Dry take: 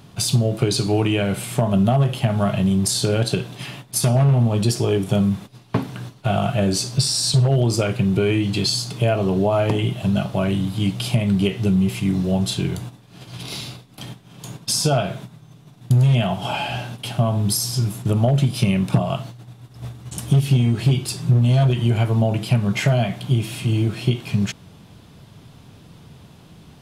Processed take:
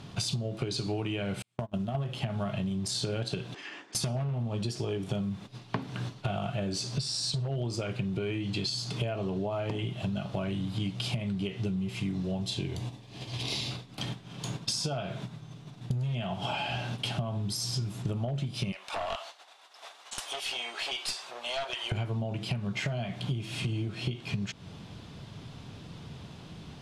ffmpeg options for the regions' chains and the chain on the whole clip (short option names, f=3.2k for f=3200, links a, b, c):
-filter_complex "[0:a]asettb=1/sr,asplit=3[a][b][c];[a]atrim=end=1.424[d];[b]atrim=start=1.42:end=1.95,asetpts=PTS-STARTPTS,afade=t=in:d=0.004:c=qsin,afade=t=out:st=0.526:d=0.004:c=qsin,agate=range=-47dB:threshold=-17dB:ratio=16:release=100:detection=peak,acompressor=threshold=-27dB:ratio=2:attack=3.2:release=140:knee=1:detection=peak,acrusher=bits=9:mode=log:mix=0:aa=0.000001[e];[c]atrim=start=1.946[f];[d][e]acrossfade=d=0.004:c1=hsin:c2=qsin[g];[g][f]acrossfade=d=0.004:c1=qsin:c2=hsin,asettb=1/sr,asplit=3[h][i][j];[h]atrim=end=3.544[k];[i]atrim=start=3.54:end=3.95,asetpts=PTS-STARTPTS,afade=t=in:d=0.004:c=qsin,afade=t=out:st=0.406:d=0.004:c=qsin,acompressor=threshold=-38dB:ratio=12:attack=3.2:release=140:knee=1:detection=peak,highpass=f=300:w=0.5412,highpass=f=300:w=1.3066,equalizer=f=320:t=q:w=4:g=5,equalizer=f=620:t=q:w=4:g=-5,equalizer=f=1.7k:t=q:w=4:g=9,equalizer=f=3.9k:t=q:w=4:g=-9,lowpass=f=7.6k:w=0.5412,lowpass=f=7.6k:w=1.3066[l];[j]atrim=start=3.946[m];[k][l]acrossfade=d=0.004:c1=hsin:c2=qsin[n];[n][m]acrossfade=d=0.004:c1=qsin:c2=hsin,asettb=1/sr,asplit=3[o][p][q];[o]atrim=end=12.424[r];[p]atrim=start=12.42:end=13.71,asetpts=PTS-STARTPTS,afade=t=in:d=0.004:c=qsin,afade=t=out:st=1.286:d=0.004:c=qsin,equalizer=f=1.4k:w=4:g=-11,bandreject=f=170:w=5.5[s];[q]atrim=start=13.706[t];[r][s]acrossfade=d=0.004:c1=hsin:c2=qsin[u];[u][t]acrossfade=d=0.004:c1=qsin:c2=hsin,asettb=1/sr,asplit=3[v][w][x];[v]atrim=end=18.724[y];[w]atrim=start=18.72:end=21.92,asetpts=PTS-STARTPTS,afade=t=in:d=0.004:c=qsin,afade=t=out:st=3.196:d=0.004:c=qsin,highpass=f=660:w=0.5412,highpass=f=660:w=1.3066,aeval=exprs='clip(val(0),-1,0.0299)':c=same[z];[x]atrim=start=21.916[aa];[y][z]acrossfade=d=0.004:c1=hsin:c2=qsin[ab];[ab][aa]acrossfade=d=0.004:c1=qsin:c2=hsin,lowpass=4.7k,aemphasis=mode=production:type=cd,acompressor=threshold=-29dB:ratio=12"